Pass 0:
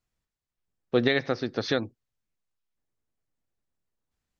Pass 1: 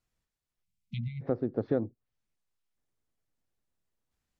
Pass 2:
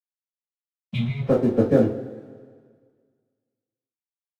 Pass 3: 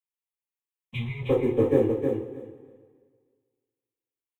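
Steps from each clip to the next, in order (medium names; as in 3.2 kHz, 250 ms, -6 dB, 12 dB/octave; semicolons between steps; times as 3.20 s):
spectral selection erased 0.63–1.21 s, 220–2000 Hz; low-pass that closes with the level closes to 590 Hz, closed at -29.5 dBFS
crossover distortion -50.5 dBFS; two-slope reverb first 0.26 s, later 1.8 s, from -19 dB, DRR -10 dB; trim +2.5 dB
static phaser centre 960 Hz, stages 8; on a send: feedback delay 312 ms, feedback 16%, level -5.5 dB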